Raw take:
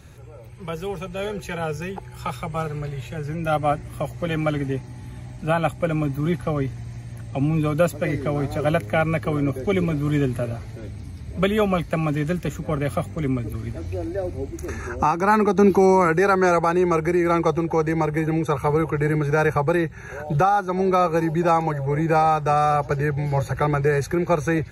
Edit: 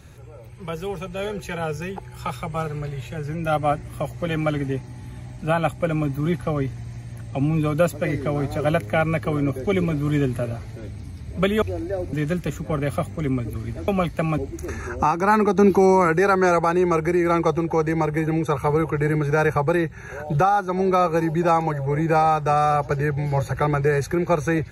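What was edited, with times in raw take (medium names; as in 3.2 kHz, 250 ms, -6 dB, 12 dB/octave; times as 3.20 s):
11.62–12.12 s: swap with 13.87–14.38 s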